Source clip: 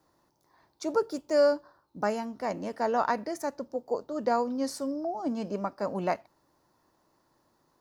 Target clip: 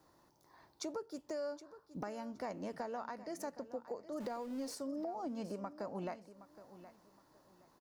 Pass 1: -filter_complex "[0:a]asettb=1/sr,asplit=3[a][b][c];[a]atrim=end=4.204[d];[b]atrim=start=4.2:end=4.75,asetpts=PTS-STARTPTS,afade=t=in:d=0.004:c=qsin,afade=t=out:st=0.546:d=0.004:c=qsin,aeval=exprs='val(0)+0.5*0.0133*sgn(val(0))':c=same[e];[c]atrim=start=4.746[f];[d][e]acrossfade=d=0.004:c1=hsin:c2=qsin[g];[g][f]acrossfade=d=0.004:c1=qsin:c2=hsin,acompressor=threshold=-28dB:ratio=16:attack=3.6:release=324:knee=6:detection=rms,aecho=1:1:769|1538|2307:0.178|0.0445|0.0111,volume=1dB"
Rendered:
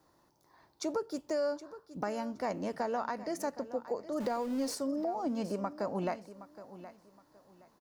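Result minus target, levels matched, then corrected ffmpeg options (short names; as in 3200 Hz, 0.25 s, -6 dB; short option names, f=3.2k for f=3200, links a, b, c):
compressor: peak gain reduction -8.5 dB
-filter_complex "[0:a]asettb=1/sr,asplit=3[a][b][c];[a]atrim=end=4.204[d];[b]atrim=start=4.2:end=4.75,asetpts=PTS-STARTPTS,afade=t=in:d=0.004:c=qsin,afade=t=out:st=0.546:d=0.004:c=qsin,aeval=exprs='val(0)+0.5*0.0133*sgn(val(0))':c=same[e];[c]atrim=start=4.746[f];[d][e]acrossfade=d=0.004:c1=hsin:c2=qsin[g];[g][f]acrossfade=d=0.004:c1=qsin:c2=hsin,acompressor=threshold=-37dB:ratio=16:attack=3.6:release=324:knee=6:detection=rms,aecho=1:1:769|1538|2307:0.178|0.0445|0.0111,volume=1dB"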